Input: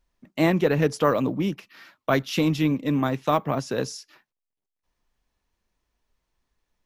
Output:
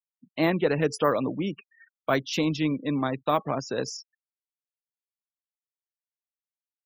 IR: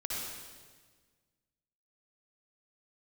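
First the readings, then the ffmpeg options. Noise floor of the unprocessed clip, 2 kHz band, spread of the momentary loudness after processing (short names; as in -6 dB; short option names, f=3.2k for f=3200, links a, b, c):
-85 dBFS, -2.0 dB, 11 LU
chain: -af "afftfilt=real='re*gte(hypot(re,im),0.0158)':imag='im*gte(hypot(re,im),0.0158)':win_size=1024:overlap=0.75,bass=f=250:g=-4,treble=f=4k:g=4,volume=-2dB"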